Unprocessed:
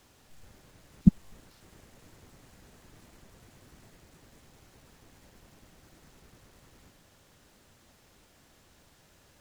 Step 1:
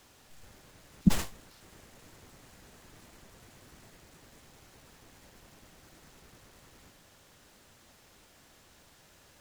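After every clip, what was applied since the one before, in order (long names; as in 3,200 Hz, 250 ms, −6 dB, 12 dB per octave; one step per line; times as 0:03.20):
low-shelf EQ 420 Hz −4.5 dB
brickwall limiter −12 dBFS, peak gain reduction 3.5 dB
level that may fall only so fast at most 130 dB per second
level +3 dB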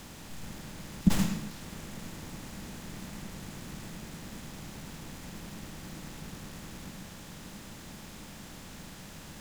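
compressor on every frequency bin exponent 0.6
on a send at −7 dB: convolution reverb RT60 0.65 s, pre-delay 102 ms
on the sum: level −1.5 dB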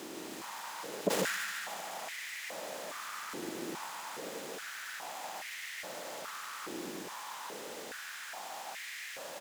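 repeating echo 146 ms, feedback 59%, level −6 dB
soft clipping −18.5 dBFS, distortion −12 dB
high-pass on a step sequencer 2.4 Hz 350–2,000 Hz
level +1.5 dB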